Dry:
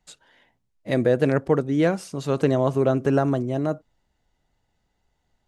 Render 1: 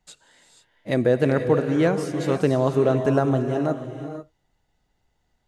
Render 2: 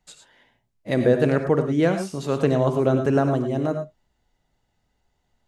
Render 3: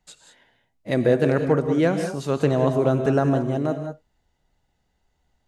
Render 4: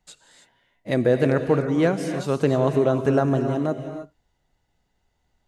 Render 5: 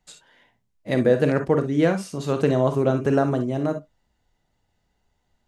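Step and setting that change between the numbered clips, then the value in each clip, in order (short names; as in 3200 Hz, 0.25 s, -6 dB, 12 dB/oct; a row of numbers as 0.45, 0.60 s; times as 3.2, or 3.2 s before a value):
non-linear reverb, gate: 520, 130, 220, 340, 80 ms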